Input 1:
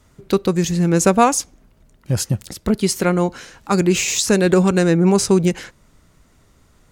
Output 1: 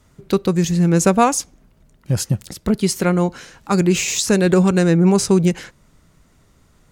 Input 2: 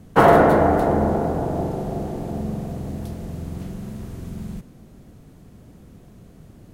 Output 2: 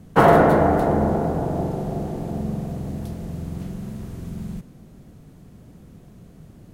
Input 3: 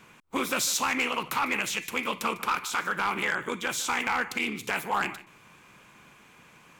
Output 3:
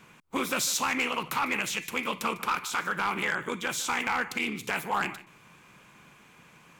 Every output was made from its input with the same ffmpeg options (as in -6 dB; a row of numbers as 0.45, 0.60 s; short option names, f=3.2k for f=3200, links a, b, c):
-af "equalizer=f=160:t=o:w=0.61:g=3.5,volume=-1dB"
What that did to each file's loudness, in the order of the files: 0.0, -1.0, -1.0 LU